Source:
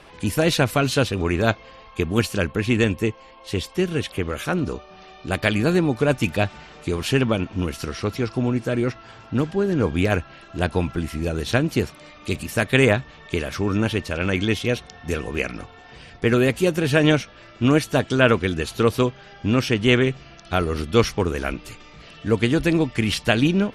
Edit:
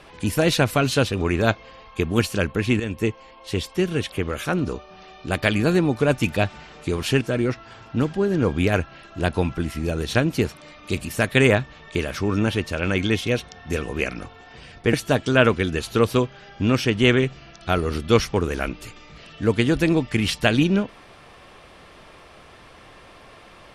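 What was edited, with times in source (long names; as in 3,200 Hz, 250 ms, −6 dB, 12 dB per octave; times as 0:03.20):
0:02.80–0:03.05: fade in, from −13.5 dB
0:07.21–0:08.59: remove
0:16.31–0:17.77: remove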